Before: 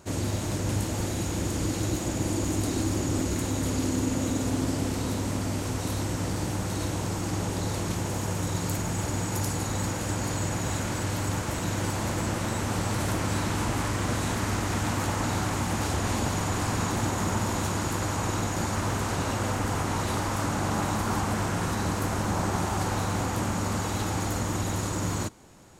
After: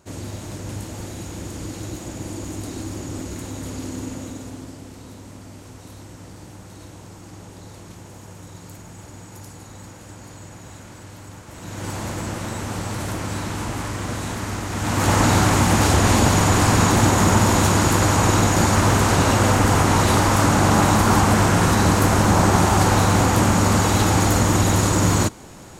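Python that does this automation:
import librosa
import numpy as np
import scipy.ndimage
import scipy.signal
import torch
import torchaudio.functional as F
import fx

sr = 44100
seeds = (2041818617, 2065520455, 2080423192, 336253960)

y = fx.gain(x, sr, db=fx.line((4.06, -3.5), (4.81, -11.0), (11.46, -11.0), (11.91, 0.5), (14.71, 0.5), (15.13, 11.5)))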